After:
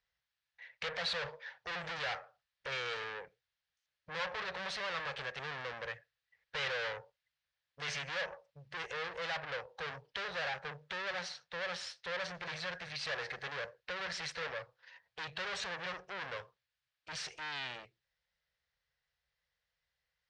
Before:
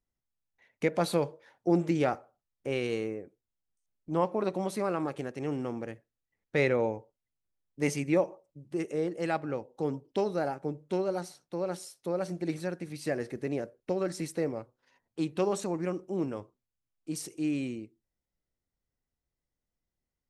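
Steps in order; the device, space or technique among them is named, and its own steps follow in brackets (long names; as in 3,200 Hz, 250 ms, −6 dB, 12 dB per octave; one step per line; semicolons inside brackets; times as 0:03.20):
scooped metal amplifier (tube saturation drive 43 dB, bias 0.6; loudspeaker in its box 89–4,500 Hz, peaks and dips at 99 Hz −9 dB, 230 Hz −9 dB, 330 Hz −5 dB, 500 Hz +7 dB, 1,700 Hz +7 dB; guitar amp tone stack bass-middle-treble 10-0-10)
level +16.5 dB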